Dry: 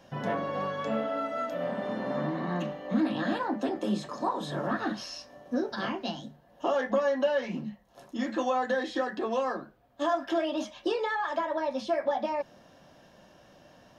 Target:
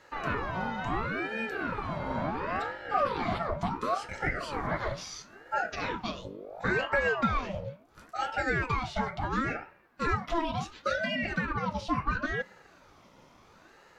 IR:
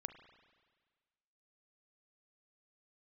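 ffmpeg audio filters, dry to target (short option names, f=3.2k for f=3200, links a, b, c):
-filter_complex "[0:a]asettb=1/sr,asplit=3[a][b][c];[a]atrim=end=6.254[d];[b]atrim=start=6.25:end=7.5,asetpts=PTS-STARTPTS,afade=t=in:d=0.004:c=qsin,afade=t=out:st=1.246:d=0.004:c=qsin,aeval=exprs='val(0)+0.00891*(sin(2*PI*50*n/s)+sin(2*PI*2*50*n/s)/2+sin(2*PI*3*50*n/s)/3+sin(2*PI*4*50*n/s)/4+sin(2*PI*5*50*n/s)/5)':c=same[e];[c]atrim=start=7.496[f];[d][e]acrossfade=d=0.004:c1=hsin:c2=qsin[g];[g][f]acrossfade=d=0.004:c1=qsin:c2=hsin,asplit=2[h][i];[1:a]atrim=start_sample=2205,afade=t=out:st=0.4:d=0.01,atrim=end_sample=18081[j];[i][j]afir=irnorm=-1:irlink=0,volume=-9dB[k];[h][k]amix=inputs=2:normalize=0,aeval=exprs='val(0)*sin(2*PI*720*n/s+720*0.55/0.72*sin(2*PI*0.72*n/s))':c=same"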